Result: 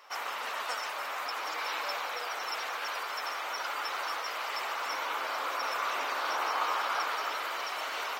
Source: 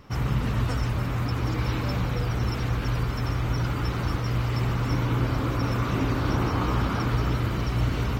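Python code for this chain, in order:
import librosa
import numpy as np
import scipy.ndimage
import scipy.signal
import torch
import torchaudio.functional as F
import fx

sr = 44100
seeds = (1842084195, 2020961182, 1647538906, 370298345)

y = scipy.signal.sosfilt(scipy.signal.butter(4, 640.0, 'highpass', fs=sr, output='sos'), x)
y = y * librosa.db_to_amplitude(1.5)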